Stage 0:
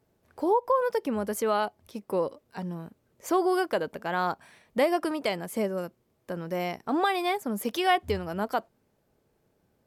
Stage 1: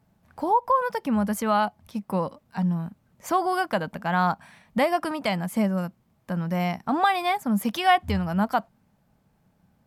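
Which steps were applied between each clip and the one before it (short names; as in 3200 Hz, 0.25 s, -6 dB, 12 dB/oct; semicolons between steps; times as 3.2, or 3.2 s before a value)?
EQ curve 120 Hz 0 dB, 190 Hz +5 dB, 400 Hz -14 dB, 780 Hz -1 dB, 6000 Hz -6 dB; gain +7 dB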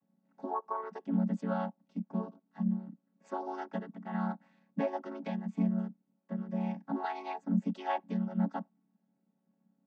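chord vocoder minor triad, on F#3; gain -9 dB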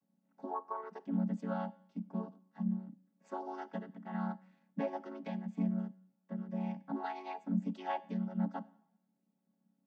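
Schroeder reverb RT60 0.74 s, combs from 29 ms, DRR 17.5 dB; gain -4 dB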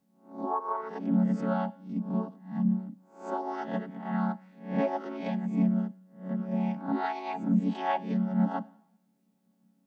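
spectral swells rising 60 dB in 0.45 s; gain +7 dB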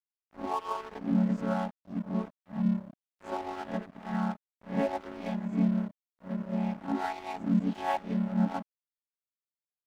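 crossover distortion -42 dBFS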